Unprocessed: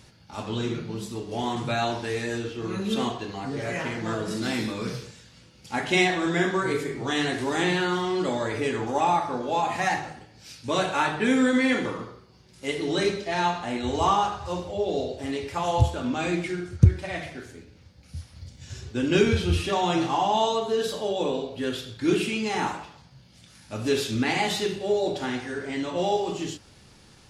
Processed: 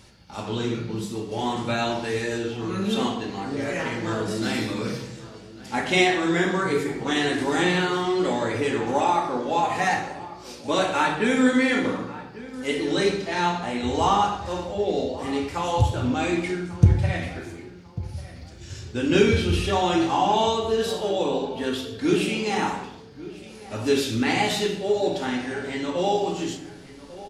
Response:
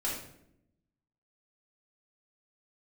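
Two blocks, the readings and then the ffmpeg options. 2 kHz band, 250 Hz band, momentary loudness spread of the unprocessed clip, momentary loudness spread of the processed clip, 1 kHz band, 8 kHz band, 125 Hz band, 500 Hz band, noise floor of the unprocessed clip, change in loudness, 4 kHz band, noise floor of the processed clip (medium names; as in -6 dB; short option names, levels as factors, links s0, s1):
+2.0 dB, +2.5 dB, 13 LU, 17 LU, +2.0 dB, +2.0 dB, +1.5 dB, +2.5 dB, -53 dBFS, +2.0 dB, +2.0 dB, -43 dBFS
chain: -filter_complex "[0:a]flanger=delay=3:depth=7.1:regen=-71:speed=0.55:shape=sinusoidal,asplit=2[s0][s1];[s1]adelay=1144,lowpass=f=2100:p=1,volume=0.15,asplit=2[s2][s3];[s3]adelay=1144,lowpass=f=2100:p=1,volume=0.32,asplit=2[s4][s5];[s5]adelay=1144,lowpass=f=2100:p=1,volume=0.32[s6];[s0][s2][s4][s6]amix=inputs=4:normalize=0,asplit=2[s7][s8];[1:a]atrim=start_sample=2205[s9];[s8][s9]afir=irnorm=-1:irlink=0,volume=0.355[s10];[s7][s10]amix=inputs=2:normalize=0,volume=1.58"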